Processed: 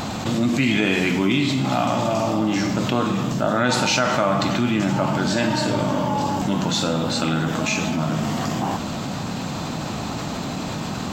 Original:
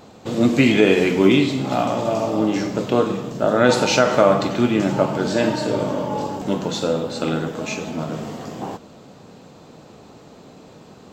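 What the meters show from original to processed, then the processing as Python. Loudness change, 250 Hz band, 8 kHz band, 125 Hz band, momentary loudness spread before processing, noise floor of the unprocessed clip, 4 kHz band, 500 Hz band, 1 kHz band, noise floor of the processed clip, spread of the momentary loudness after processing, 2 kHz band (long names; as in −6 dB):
−2.5 dB, −1.0 dB, +3.5 dB, +3.0 dB, 13 LU, −45 dBFS, +2.5 dB, −5.5 dB, +1.0 dB, −28 dBFS, 9 LU, +0.5 dB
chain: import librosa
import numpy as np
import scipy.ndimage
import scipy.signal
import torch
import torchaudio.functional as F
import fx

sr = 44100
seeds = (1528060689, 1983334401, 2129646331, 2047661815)

y = fx.peak_eq(x, sr, hz=450.0, db=-12.5, octaves=0.76)
y = fx.env_flatten(y, sr, amount_pct=70)
y = y * librosa.db_to_amplitude(-4.0)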